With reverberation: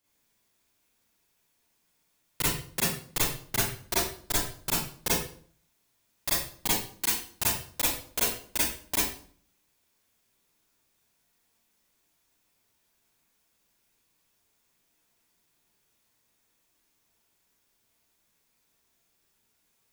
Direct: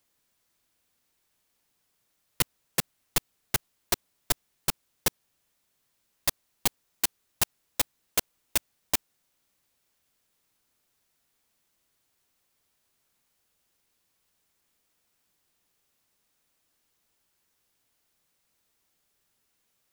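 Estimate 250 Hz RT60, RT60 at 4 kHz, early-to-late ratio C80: 0.65 s, 0.40 s, 6.0 dB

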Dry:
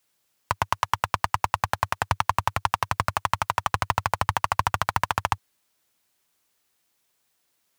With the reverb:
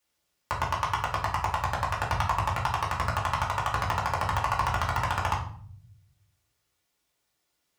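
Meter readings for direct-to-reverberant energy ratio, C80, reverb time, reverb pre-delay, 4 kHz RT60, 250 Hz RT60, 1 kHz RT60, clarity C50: -4.5 dB, 12.0 dB, 0.55 s, 3 ms, 0.40 s, 1.0 s, 0.50 s, 7.0 dB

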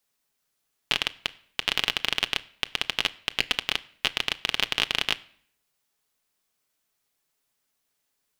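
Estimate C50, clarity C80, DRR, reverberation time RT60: 21.5 dB, 24.0 dB, 9.5 dB, not exponential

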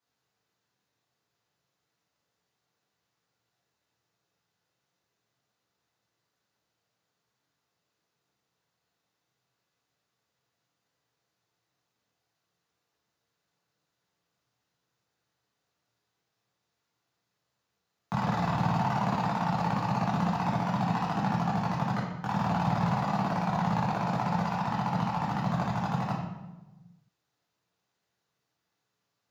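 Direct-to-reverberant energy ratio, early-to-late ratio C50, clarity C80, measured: -7.0 dB, 2.0 dB, 4.5 dB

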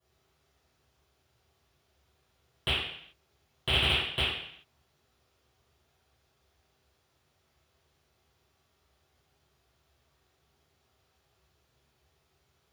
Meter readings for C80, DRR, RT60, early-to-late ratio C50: 4.0 dB, -19.0 dB, 0.65 s, 0.0 dB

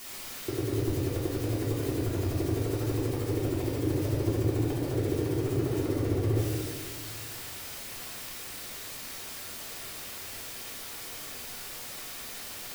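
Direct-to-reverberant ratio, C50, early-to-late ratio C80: -7.5 dB, 0.0 dB, 2.0 dB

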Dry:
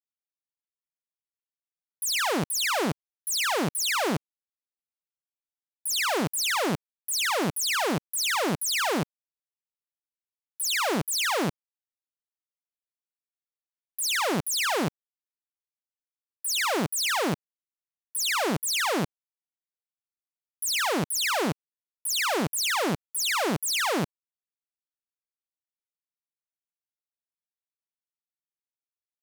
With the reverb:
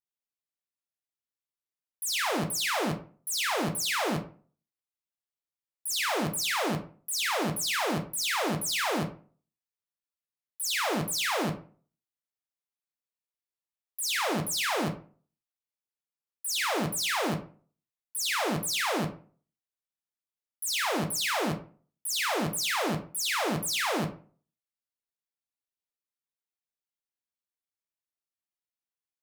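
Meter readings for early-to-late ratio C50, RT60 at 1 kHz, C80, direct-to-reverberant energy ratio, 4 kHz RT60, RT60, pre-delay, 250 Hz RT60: 11.5 dB, 0.40 s, 16.0 dB, 4.0 dB, 0.25 s, 0.40 s, 8 ms, 0.45 s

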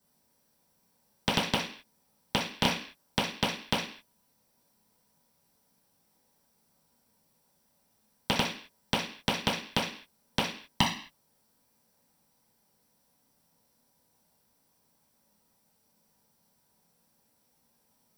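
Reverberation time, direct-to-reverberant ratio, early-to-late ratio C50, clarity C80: 0.45 s, -9.5 dB, 6.5 dB, 12.0 dB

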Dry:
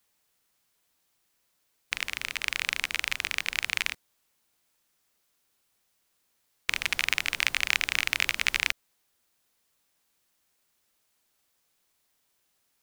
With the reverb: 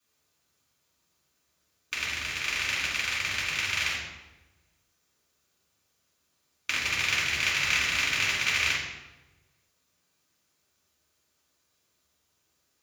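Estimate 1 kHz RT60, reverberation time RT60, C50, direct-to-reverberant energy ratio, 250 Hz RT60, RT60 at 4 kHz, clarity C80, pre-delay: 1.0 s, 1.1 s, 1.0 dB, -8.0 dB, 1.4 s, 0.75 s, 4.0 dB, 3 ms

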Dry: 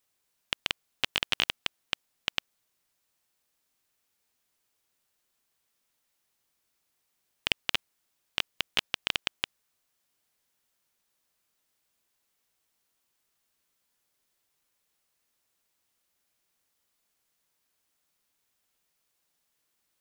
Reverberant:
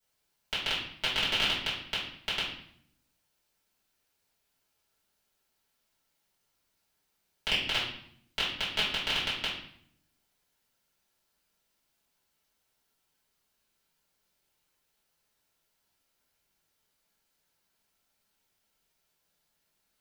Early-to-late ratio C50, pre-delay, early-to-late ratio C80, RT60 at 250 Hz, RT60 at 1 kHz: 3.5 dB, 3 ms, 7.5 dB, 1.0 s, 0.65 s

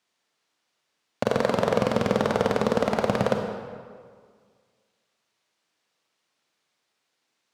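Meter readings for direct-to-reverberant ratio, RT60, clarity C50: 3.5 dB, 1.9 s, 4.5 dB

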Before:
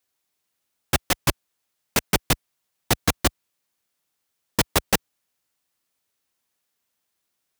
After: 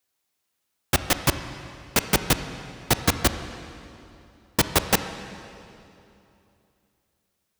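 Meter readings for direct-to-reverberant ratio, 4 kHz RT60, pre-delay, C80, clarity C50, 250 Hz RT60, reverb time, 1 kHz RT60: 9.0 dB, 2.4 s, 24 ms, 10.5 dB, 9.5 dB, 3.0 s, 2.9 s, 2.8 s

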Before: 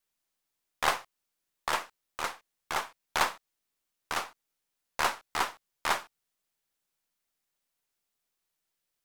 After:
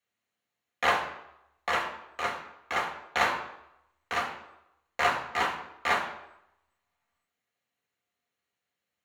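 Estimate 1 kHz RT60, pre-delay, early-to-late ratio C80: 0.85 s, 3 ms, 10.5 dB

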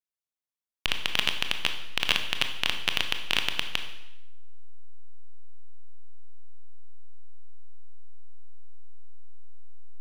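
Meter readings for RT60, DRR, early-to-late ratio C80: 0.90 s, 6.0 dB, 10.5 dB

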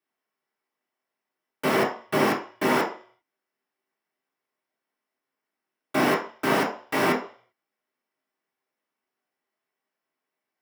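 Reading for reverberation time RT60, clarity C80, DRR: 0.45 s, 12.5 dB, -6.0 dB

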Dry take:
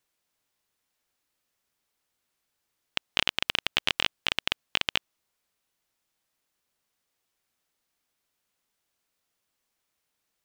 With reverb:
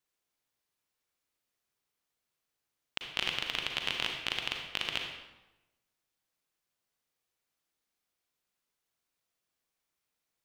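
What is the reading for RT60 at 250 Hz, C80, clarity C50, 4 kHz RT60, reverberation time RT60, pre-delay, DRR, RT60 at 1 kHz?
1.1 s, 6.0 dB, 3.0 dB, 0.80 s, 1.0 s, 36 ms, 2.0 dB, 1.0 s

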